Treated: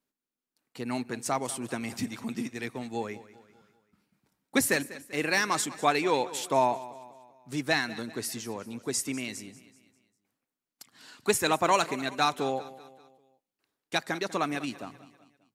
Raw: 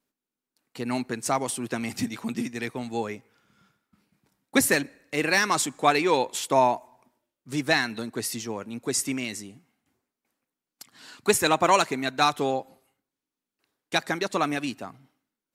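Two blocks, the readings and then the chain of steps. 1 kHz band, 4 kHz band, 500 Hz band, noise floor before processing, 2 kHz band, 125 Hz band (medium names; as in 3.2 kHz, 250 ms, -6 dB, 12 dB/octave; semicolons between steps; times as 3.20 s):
-4.0 dB, -4.0 dB, -4.0 dB, under -85 dBFS, -4.0 dB, -4.0 dB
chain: feedback delay 195 ms, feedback 47%, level -17 dB; trim -4 dB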